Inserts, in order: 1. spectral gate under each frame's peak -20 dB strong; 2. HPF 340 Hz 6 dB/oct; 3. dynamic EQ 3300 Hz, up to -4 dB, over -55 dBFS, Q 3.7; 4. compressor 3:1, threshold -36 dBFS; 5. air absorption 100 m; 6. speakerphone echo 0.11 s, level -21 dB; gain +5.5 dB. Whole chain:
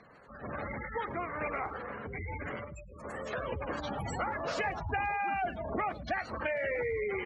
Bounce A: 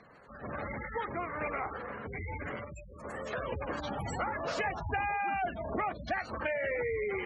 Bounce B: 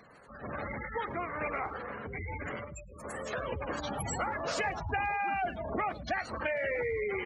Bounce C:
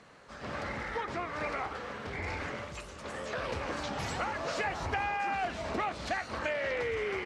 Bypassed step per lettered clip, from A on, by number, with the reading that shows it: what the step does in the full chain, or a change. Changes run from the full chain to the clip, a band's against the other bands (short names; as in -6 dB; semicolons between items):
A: 6, echo-to-direct -27.5 dB to none; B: 5, 8 kHz band +9.0 dB; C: 1, 4 kHz band +6.5 dB